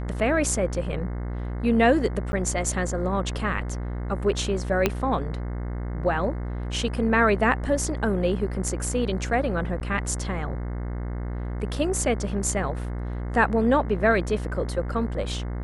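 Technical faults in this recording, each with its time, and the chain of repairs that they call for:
buzz 60 Hz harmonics 36 -30 dBFS
2.32–2.33 gap 10 ms
4.86 pop -6 dBFS
9.8–9.81 gap 9.3 ms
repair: de-click; de-hum 60 Hz, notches 36; interpolate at 2.32, 10 ms; interpolate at 9.8, 9.3 ms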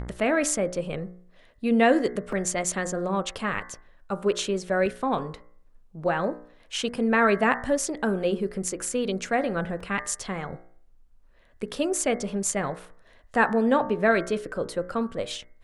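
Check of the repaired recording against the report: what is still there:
4.86 pop

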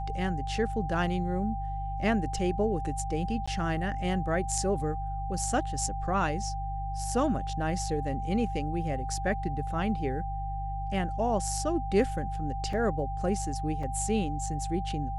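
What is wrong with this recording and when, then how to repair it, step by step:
hum 50 Hz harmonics 3 -35 dBFS
tone 790 Hz -35 dBFS
3.46–3.48 gap 15 ms
12.73 gap 3.1 ms
13.83 gap 4.3 ms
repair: de-hum 50 Hz, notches 3; notch 790 Hz, Q 30; interpolate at 3.46, 15 ms; interpolate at 12.73, 3.1 ms; interpolate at 13.83, 4.3 ms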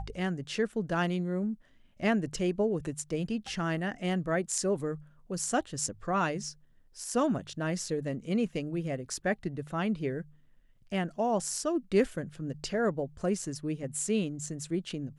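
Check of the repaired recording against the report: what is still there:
none

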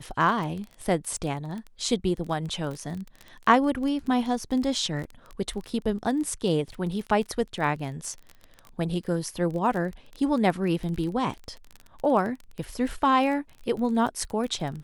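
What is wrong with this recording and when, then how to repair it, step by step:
crackle 23/s -31 dBFS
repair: de-click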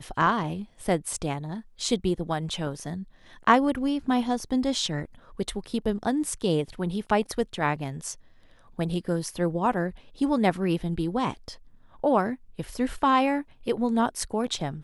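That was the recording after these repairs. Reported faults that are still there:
none

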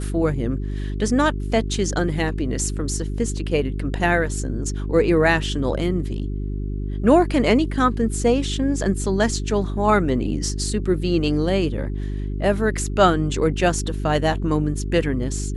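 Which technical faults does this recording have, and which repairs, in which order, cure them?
hum 50 Hz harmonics 8 -26 dBFS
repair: de-hum 50 Hz, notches 8

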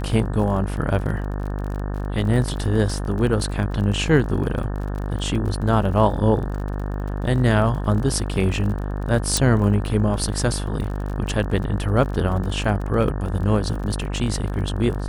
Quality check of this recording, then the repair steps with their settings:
buzz 50 Hz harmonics 36 -26 dBFS
crackle 38/s -30 dBFS
9.37 pop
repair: de-click; de-hum 50 Hz, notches 36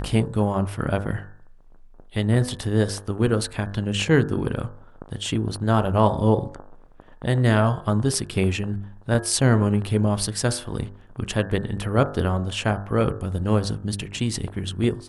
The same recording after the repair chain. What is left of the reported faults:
9.37 pop

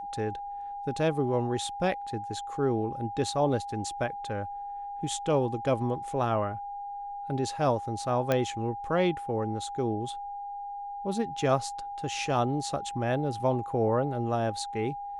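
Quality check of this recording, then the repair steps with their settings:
tone 810 Hz -35 dBFS
8.32 pop -12 dBFS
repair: de-click; notch 810 Hz, Q 30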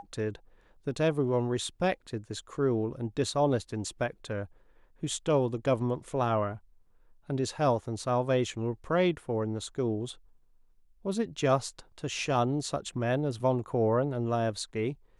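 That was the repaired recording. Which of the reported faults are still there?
none

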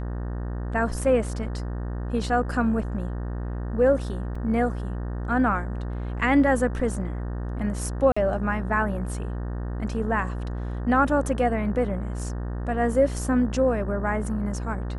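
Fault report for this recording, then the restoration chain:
buzz 60 Hz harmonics 31 -30 dBFS
4.35 gap 4.5 ms
8.12–8.16 gap 45 ms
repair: de-hum 60 Hz, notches 31; interpolate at 4.35, 4.5 ms; interpolate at 8.12, 45 ms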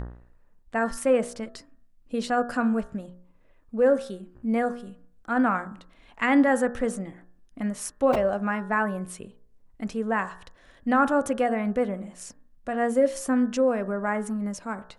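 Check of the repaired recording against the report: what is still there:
none

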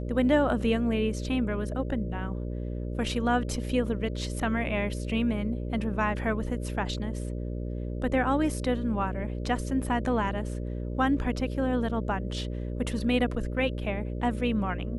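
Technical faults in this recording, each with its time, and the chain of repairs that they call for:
buzz 60 Hz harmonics 10 -33 dBFS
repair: de-hum 60 Hz, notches 10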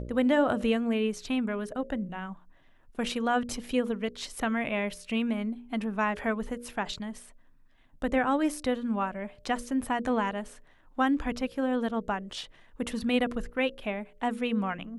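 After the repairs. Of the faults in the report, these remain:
none

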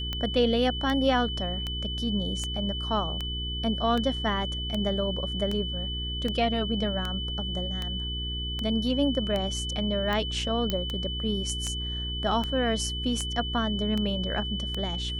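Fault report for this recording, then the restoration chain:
hum 60 Hz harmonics 7 -34 dBFS
tick 78 rpm -17 dBFS
tone 3000 Hz -33 dBFS
10.7 pop -13 dBFS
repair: de-click; de-hum 60 Hz, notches 7; notch 3000 Hz, Q 30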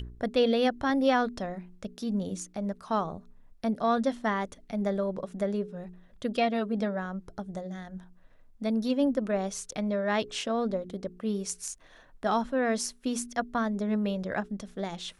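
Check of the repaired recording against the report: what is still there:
none

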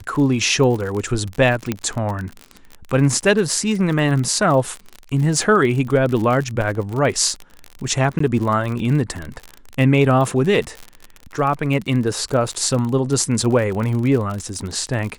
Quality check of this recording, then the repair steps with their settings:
crackle 49/s -24 dBFS
1.72 pop -7 dBFS
8.19–8.2 gap 14 ms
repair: de-click; interpolate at 8.19, 14 ms

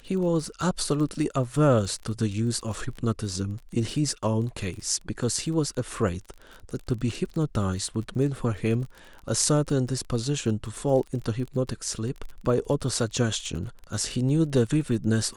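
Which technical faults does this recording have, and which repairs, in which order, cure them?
crackle 29/s -34 dBFS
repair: de-click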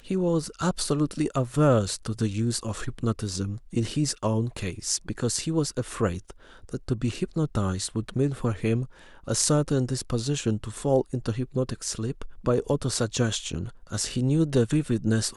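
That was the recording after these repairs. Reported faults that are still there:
none

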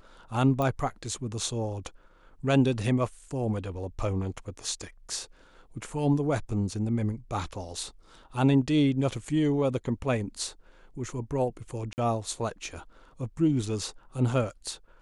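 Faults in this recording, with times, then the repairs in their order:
0.62 pop -17 dBFS
11.93–11.98 gap 49 ms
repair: de-click; interpolate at 11.93, 49 ms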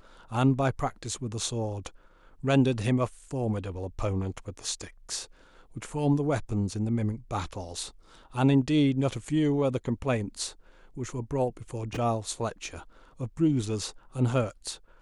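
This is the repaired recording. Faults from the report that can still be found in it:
none

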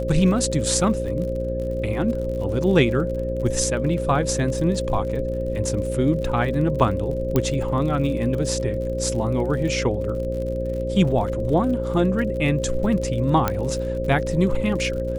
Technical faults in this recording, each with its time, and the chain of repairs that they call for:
buzz 60 Hz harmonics 10 -28 dBFS
crackle 49/s -31 dBFS
tone 530 Hz -26 dBFS
7.36 pop -7 dBFS
13.48 pop -7 dBFS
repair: de-click; de-hum 60 Hz, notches 10; notch 530 Hz, Q 30

